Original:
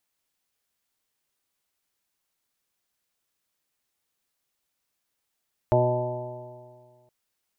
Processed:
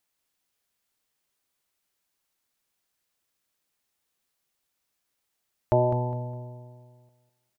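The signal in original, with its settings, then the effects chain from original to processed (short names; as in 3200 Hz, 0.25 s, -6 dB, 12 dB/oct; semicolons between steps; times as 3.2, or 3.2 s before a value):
stretched partials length 1.37 s, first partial 122 Hz, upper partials -10/-2.5/-11/3/-12.5/-4/-18.5 dB, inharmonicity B 0.00099, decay 1.89 s, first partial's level -21.5 dB
on a send: feedback echo 0.205 s, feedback 28%, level -9.5 dB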